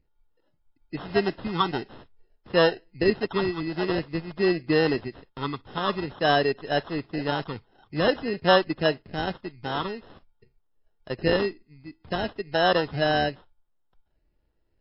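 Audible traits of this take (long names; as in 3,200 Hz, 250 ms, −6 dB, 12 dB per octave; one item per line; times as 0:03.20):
phaser sweep stages 12, 0.49 Hz, lowest notch 590–2,400 Hz
aliases and images of a low sample rate 2,300 Hz, jitter 0%
MP3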